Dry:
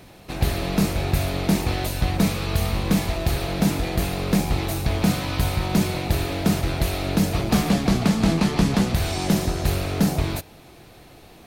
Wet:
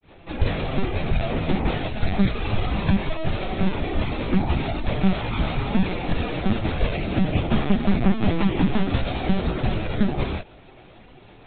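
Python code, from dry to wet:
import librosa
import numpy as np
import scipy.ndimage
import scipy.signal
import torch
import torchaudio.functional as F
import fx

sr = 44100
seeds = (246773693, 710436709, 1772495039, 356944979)

y = fx.lpc_vocoder(x, sr, seeds[0], excitation='pitch_kept', order=16)
y = fx.granulator(y, sr, seeds[1], grain_ms=254.0, per_s=11.0, spray_ms=15.0, spread_st=0)
y = F.gain(torch.from_numpy(y), 2.5).numpy()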